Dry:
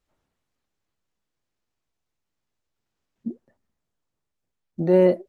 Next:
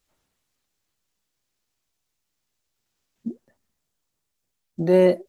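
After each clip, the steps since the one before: treble shelf 2.7 kHz +11 dB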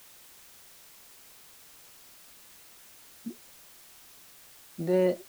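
added noise white -45 dBFS; trim -8.5 dB

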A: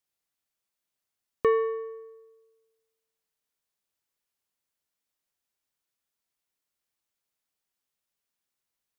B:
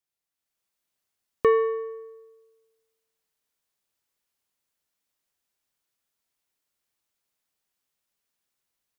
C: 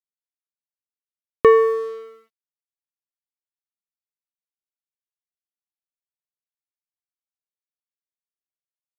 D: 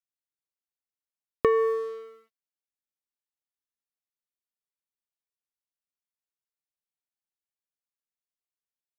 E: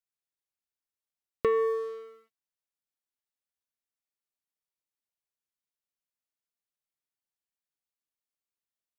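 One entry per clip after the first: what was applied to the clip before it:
level rider gain up to 7.5 dB; trim -4 dB
crossover distortion -50 dBFS; trim +7.5 dB
compression, threshold -13 dBFS, peak gain reduction 6 dB; trim -5 dB
saturation -14 dBFS, distortion -18 dB; trim -2 dB

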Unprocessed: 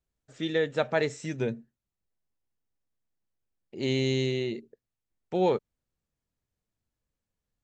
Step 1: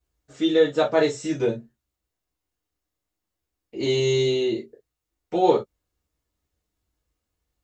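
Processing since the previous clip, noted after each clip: gated-style reverb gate 80 ms falling, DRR -6 dB; dynamic bell 2.1 kHz, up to -7 dB, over -41 dBFS, Q 1.8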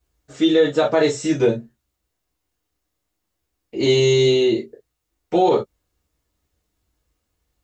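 peak limiter -13.5 dBFS, peak gain reduction 9.5 dB; trim +6.5 dB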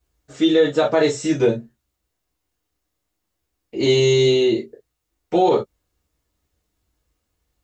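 no audible change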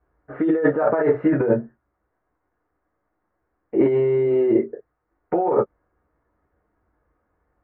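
steep low-pass 1.7 kHz 36 dB/octave; bass shelf 230 Hz -11 dB; compressor with a negative ratio -24 dBFS, ratio -1; trim +6 dB

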